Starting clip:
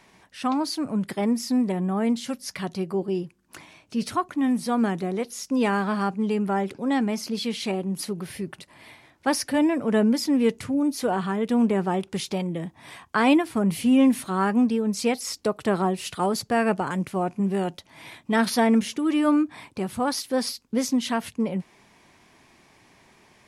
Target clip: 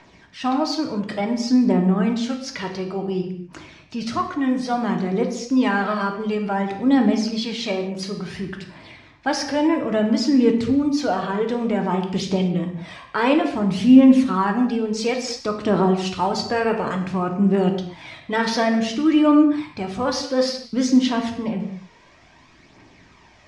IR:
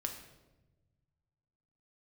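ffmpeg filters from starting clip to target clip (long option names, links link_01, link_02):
-filter_complex "[0:a]lowpass=frequency=6400:width=0.5412,lowpass=frequency=6400:width=1.3066,asplit=2[link_01][link_02];[link_02]alimiter=limit=-19dB:level=0:latency=1,volume=-1.5dB[link_03];[link_01][link_03]amix=inputs=2:normalize=0,aphaser=in_gain=1:out_gain=1:delay=2.2:decay=0.46:speed=0.57:type=triangular[link_04];[1:a]atrim=start_sample=2205,afade=type=out:start_time=0.31:duration=0.01,atrim=end_sample=14112[link_05];[link_04][link_05]afir=irnorm=-1:irlink=0,volume=-1.5dB"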